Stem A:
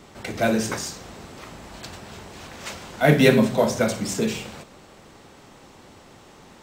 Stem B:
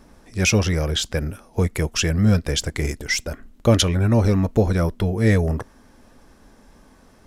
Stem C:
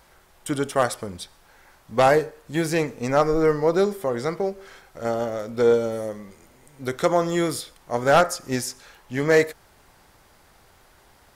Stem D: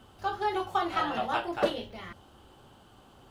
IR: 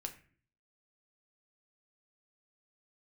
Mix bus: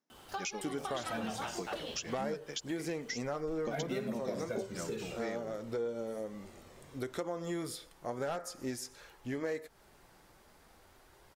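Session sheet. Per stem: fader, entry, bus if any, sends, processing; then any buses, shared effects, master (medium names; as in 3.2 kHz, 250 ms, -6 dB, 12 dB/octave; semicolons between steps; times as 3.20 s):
-6.0 dB, 0.70 s, muted 2.28–3.47 s, bus B, no send, Shepard-style flanger falling 0.41 Hz
+2.0 dB, 0.00 s, bus A, no send, FFT band-pass 130–7400 Hz; upward expansion 2.5:1, over -38 dBFS
-3.0 dB, 0.15 s, bus B, no send, flange 0.45 Hz, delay 1.8 ms, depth 4.5 ms, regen -56%
-0.5 dB, 0.10 s, bus A, no send, none
bus A: 0.0 dB, tilt EQ +2.5 dB/octave; compression, threshold -31 dBFS, peak gain reduction 16 dB
bus B: 0.0 dB, compression 2:1, threshold -28 dBFS, peak gain reduction 6 dB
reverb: none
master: peaking EQ 330 Hz +3.5 dB 1.6 oct; compression 2.5:1, threshold -38 dBFS, peak gain reduction 11.5 dB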